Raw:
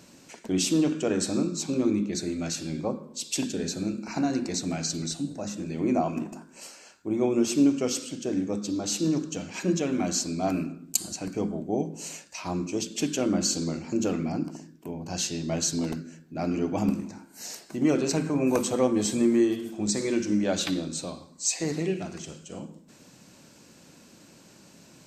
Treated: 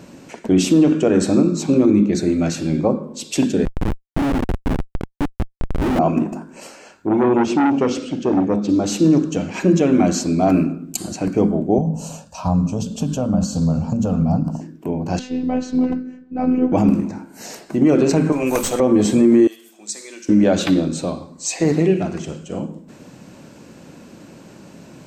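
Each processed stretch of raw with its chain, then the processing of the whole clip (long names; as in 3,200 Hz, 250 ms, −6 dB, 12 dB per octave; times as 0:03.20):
0:03.65–0:05.99: Chebyshev band-pass filter 210–2,200 Hz + comparator with hysteresis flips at −27 dBFS + highs frequency-modulated by the lows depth 0.82 ms
0:07.07–0:08.69: low-pass filter 5,000 Hz + saturating transformer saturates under 1,100 Hz
0:11.78–0:14.61: downward compressor 3 to 1, threshold −29 dBFS + low-shelf EQ 340 Hz +11.5 dB + phaser with its sweep stopped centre 840 Hz, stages 4
0:15.19–0:16.72: phases set to zero 253 Hz + head-to-tape spacing loss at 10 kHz 23 dB
0:18.32–0:18.80: spectral tilt +4 dB per octave + tube saturation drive 21 dB, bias 0.5 + floating-point word with a short mantissa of 6 bits
0:19.47–0:20.29: high-pass filter 180 Hz + first difference
whole clip: drawn EQ curve 560 Hz 0 dB, 2,800 Hz −6 dB, 4,600 Hz −11 dB; boost into a limiter +17.5 dB; level −4.5 dB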